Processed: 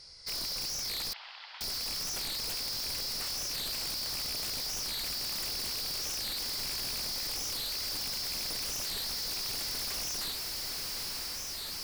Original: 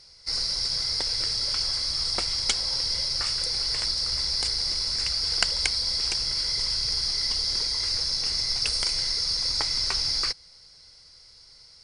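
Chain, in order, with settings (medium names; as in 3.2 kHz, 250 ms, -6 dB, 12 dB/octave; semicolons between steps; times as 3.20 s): rattle on loud lows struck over -40 dBFS, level -10 dBFS; integer overflow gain 19.5 dB; echo that smears into a reverb 951 ms, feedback 61%, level -9.5 dB; hard clipper -34.5 dBFS, distortion -5 dB; 1.13–1.61 s: Chebyshev band-pass 800–3300 Hz, order 3; warped record 45 rpm, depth 250 cents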